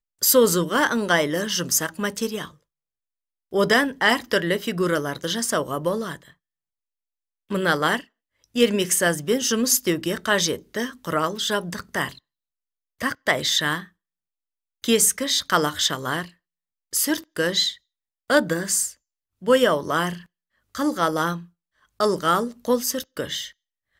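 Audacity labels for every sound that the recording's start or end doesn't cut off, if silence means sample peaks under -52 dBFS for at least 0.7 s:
3.510000	6.330000	sound
7.500000	12.190000	sound
13.000000	13.890000	sound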